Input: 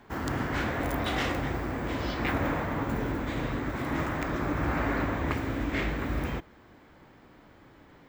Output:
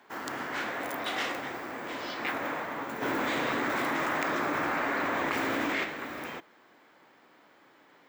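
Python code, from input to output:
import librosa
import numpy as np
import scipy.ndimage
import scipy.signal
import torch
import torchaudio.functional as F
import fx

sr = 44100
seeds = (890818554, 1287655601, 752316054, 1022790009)

y = scipy.signal.sosfilt(scipy.signal.butter(2, 210.0, 'highpass', fs=sr, output='sos'), x)
y = fx.low_shelf(y, sr, hz=370.0, db=-11.5)
y = fx.env_flatten(y, sr, amount_pct=100, at=(3.01, 5.83), fade=0.02)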